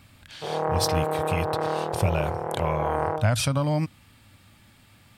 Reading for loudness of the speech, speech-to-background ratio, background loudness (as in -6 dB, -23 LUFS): -28.0 LUFS, 0.5 dB, -28.5 LUFS